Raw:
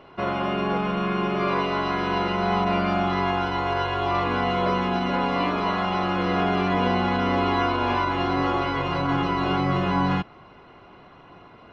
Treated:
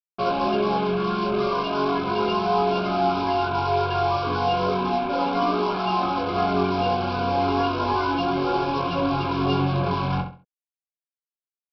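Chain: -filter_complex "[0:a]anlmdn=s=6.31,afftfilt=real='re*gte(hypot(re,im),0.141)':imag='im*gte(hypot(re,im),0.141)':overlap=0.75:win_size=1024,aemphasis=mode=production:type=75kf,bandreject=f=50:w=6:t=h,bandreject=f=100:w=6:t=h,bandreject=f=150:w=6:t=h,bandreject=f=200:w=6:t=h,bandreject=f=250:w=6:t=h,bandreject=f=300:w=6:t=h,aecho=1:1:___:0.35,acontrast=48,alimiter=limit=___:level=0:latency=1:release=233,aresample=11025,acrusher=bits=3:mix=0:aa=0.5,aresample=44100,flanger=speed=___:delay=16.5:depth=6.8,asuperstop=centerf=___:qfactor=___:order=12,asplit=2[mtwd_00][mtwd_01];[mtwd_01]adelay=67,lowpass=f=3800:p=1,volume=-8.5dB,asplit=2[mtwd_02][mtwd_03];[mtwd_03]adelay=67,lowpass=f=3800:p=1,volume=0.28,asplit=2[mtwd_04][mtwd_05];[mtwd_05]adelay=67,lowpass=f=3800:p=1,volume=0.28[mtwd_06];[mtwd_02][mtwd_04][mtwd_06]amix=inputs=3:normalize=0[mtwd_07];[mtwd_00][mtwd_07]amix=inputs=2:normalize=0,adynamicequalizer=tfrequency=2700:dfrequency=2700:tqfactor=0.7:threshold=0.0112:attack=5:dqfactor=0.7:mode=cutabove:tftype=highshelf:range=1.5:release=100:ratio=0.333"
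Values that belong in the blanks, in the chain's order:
7.5, -11.5dB, 0.35, 1900, 4.4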